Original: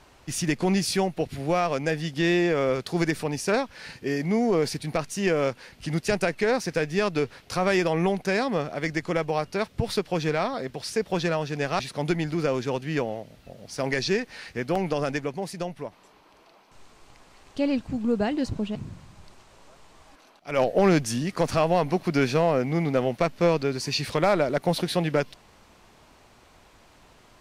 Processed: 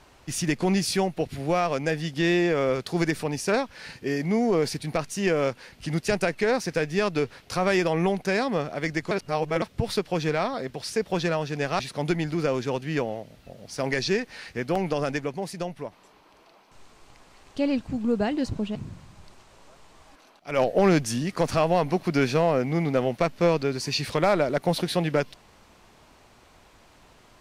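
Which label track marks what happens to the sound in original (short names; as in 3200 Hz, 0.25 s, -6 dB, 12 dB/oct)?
9.110000	9.620000	reverse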